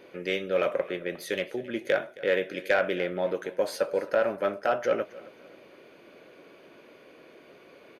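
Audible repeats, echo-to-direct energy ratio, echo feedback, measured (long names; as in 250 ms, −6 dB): 2, −19.5 dB, 32%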